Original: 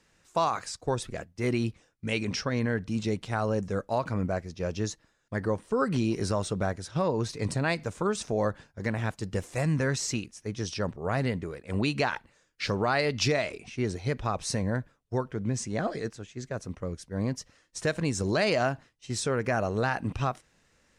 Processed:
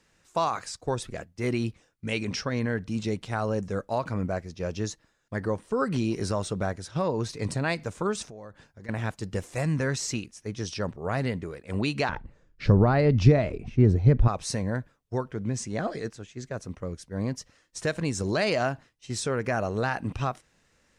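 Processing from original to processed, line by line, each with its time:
0:08.24–0:08.89: downward compressor 3 to 1, threshold −46 dBFS
0:12.09–0:14.28: spectral tilt −4.5 dB per octave

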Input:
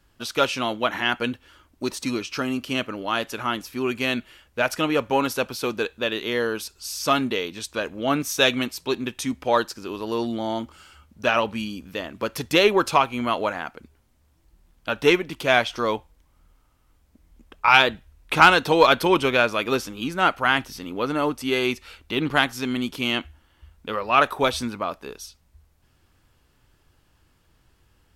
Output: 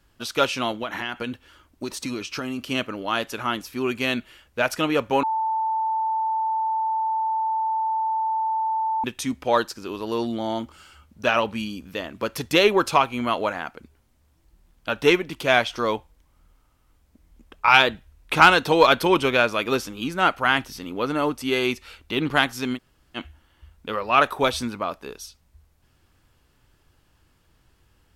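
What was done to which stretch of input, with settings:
0:00.71–0:02.59: downward compressor 5 to 1, threshold −25 dBFS
0:05.23–0:09.04: beep over 885 Hz −21 dBFS
0:22.76–0:23.17: fill with room tone, crossfade 0.06 s

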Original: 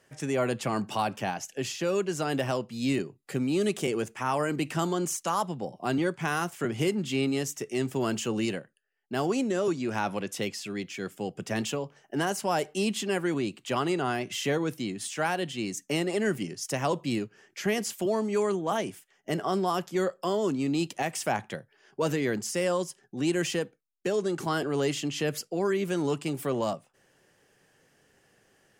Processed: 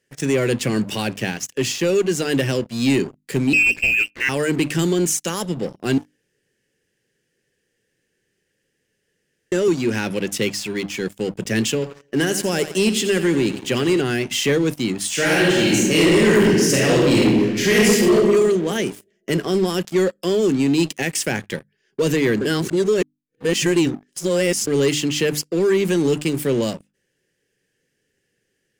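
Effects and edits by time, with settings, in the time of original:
0:03.53–0:04.29: voice inversion scrambler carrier 2,900 Hz
0:05.98–0:09.52: fill with room tone
0:11.73–0:14.01: repeating echo 87 ms, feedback 54%, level −12 dB
0:15.08–0:18.12: thrown reverb, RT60 1.5 s, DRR −6.5 dB
0:22.41–0:24.67: reverse
whole clip: flat-topped bell 910 Hz −14 dB 1.3 octaves; mains-hum notches 50/100/150/200/250/300 Hz; leveller curve on the samples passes 3

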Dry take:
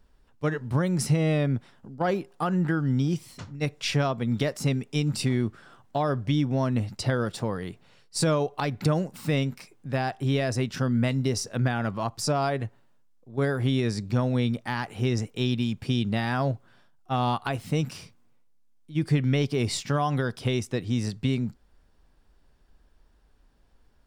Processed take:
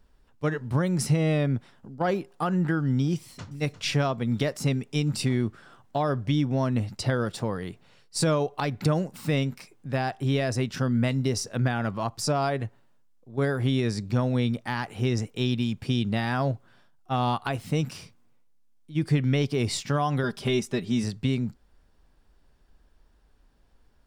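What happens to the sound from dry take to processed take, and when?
0:03.16–0:03.60: delay throw 350 ms, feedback 45%, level −12 dB
0:20.23–0:21.04: comb filter 5 ms, depth 74%

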